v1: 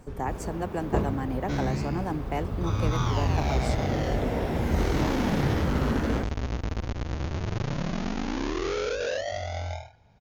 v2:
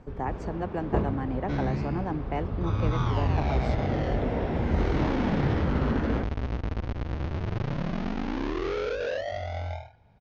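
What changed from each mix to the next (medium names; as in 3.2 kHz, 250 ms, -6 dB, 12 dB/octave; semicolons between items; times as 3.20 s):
master: add distance through air 200 m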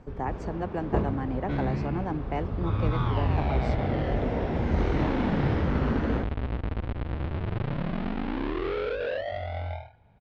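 second sound: add low-pass 3.9 kHz 24 dB/octave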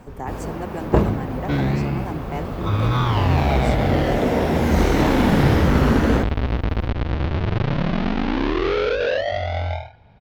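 first sound +9.5 dB; second sound +8.5 dB; master: remove distance through air 200 m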